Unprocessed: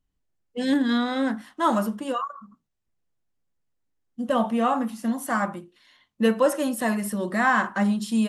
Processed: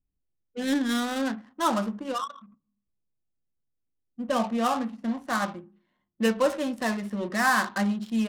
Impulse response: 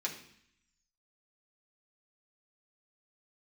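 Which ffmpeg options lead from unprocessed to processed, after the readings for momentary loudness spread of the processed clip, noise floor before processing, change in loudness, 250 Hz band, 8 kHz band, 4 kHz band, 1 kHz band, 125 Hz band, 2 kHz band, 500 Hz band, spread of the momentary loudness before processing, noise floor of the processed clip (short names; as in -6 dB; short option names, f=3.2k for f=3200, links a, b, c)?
9 LU, -77 dBFS, -3.0 dB, -3.5 dB, -1.0 dB, +0.5 dB, -2.5 dB, -3.5 dB, -1.5 dB, -3.5 dB, 9 LU, -80 dBFS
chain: -filter_complex "[0:a]asplit=2[a][b];[1:a]atrim=start_sample=2205[c];[b][c]afir=irnorm=-1:irlink=0,volume=-20dB[d];[a][d]amix=inputs=2:normalize=0,adynamicsmooth=sensitivity=5.5:basefreq=630,highshelf=f=3.3k:g=10,volume=-4dB"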